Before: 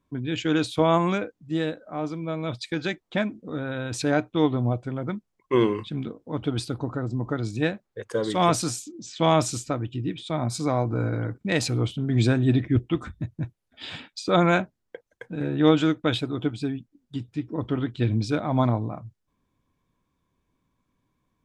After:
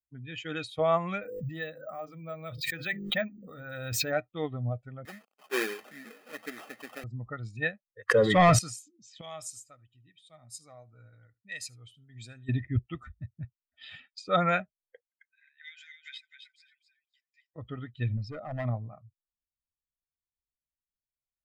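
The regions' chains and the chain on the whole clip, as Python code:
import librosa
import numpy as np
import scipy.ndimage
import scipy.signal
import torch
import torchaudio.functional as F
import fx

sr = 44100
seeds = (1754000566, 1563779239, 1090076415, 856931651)

y = fx.chain(x, sr, fx.hum_notches(base_hz=50, count=10),
    fx.resample_bad(factor=2, down='none', up='hold'),
    fx.pre_swell(db_per_s=21.0), at=(1.22, 4.12))
y = fx.chain(y, sr, fx.zero_step(step_db=-32.5),
    fx.sample_hold(seeds[0], rate_hz=2000.0, jitter_pct=20),
    fx.highpass(hz=230.0, slope=24), at=(5.05, 7.04))
y = fx.chain(y, sr, fx.bass_treble(bass_db=3, treble_db=-9),
    fx.leveller(passes=2),
    fx.env_flatten(amount_pct=70), at=(8.08, 8.59))
y = fx.chain(y, sr, fx.pre_emphasis(coefficient=0.8),
    fx.echo_single(ms=76, db=-18.0), at=(9.21, 12.49))
y = fx.chain(y, sr, fx.cheby_ripple_highpass(hz=1500.0, ripple_db=9),
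    fx.echo_feedback(ms=263, feedback_pct=19, wet_db=-5), at=(15.08, 17.56))
y = fx.chain(y, sr, fx.envelope_sharpen(power=1.5),
    fx.overload_stage(gain_db=22.0), at=(18.17, 18.65))
y = fx.bin_expand(y, sr, power=1.5)
y = fx.peak_eq(y, sr, hz=1800.0, db=8.0, octaves=0.84)
y = y + 0.63 * np.pad(y, (int(1.6 * sr / 1000.0), 0))[:len(y)]
y = F.gain(torch.from_numpy(y), -5.5).numpy()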